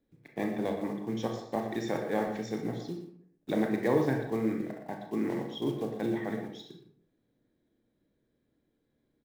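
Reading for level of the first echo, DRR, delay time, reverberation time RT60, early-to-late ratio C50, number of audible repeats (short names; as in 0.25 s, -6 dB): -11.0 dB, 2.0 dB, 0.118 s, 0.65 s, 5.0 dB, 1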